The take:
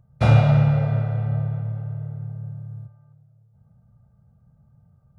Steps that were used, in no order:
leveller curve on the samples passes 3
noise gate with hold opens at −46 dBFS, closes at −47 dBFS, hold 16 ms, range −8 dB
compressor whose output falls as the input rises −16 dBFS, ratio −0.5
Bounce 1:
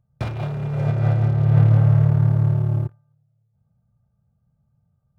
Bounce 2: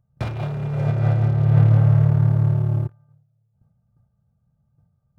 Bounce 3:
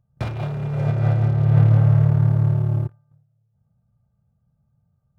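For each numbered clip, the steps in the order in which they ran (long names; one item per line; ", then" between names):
leveller curve on the samples, then noise gate with hold, then compressor whose output falls as the input rises
noise gate with hold, then leveller curve on the samples, then compressor whose output falls as the input rises
leveller curve on the samples, then compressor whose output falls as the input rises, then noise gate with hold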